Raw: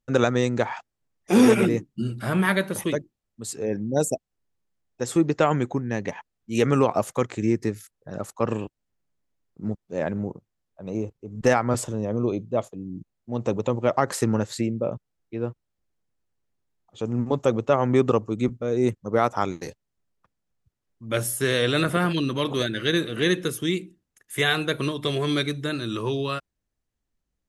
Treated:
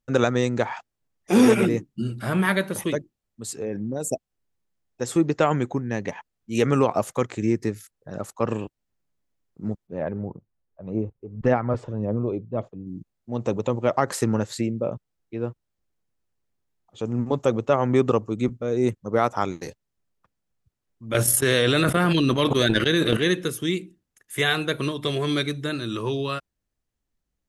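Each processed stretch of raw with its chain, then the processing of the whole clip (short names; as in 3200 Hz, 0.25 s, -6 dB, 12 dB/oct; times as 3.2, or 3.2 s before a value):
3.6–4.05 bell 5800 Hz -7.5 dB 0.37 oct + compressor 5:1, threshold -24 dBFS
9.87–12.87 phaser 1.8 Hz, delay 2.6 ms, feedback 36% + tape spacing loss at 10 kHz 35 dB
21.14–23.17 gate -27 dBFS, range -28 dB + fast leveller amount 100%
whole clip: dry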